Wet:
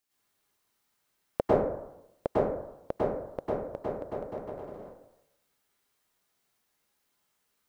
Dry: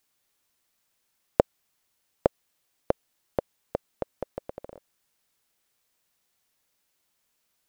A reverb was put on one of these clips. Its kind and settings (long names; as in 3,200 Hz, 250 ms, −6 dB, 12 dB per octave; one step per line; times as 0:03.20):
dense smooth reverb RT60 0.81 s, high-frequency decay 0.4×, pre-delay 90 ms, DRR −10 dB
level −9.5 dB